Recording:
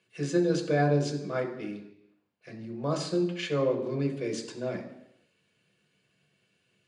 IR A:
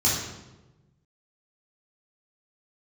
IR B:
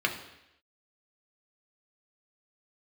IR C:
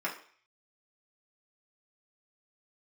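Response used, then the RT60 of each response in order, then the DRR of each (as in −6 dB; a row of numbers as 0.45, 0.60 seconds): B; 1.1, 0.85, 0.50 seconds; −8.0, 1.5, −5.0 decibels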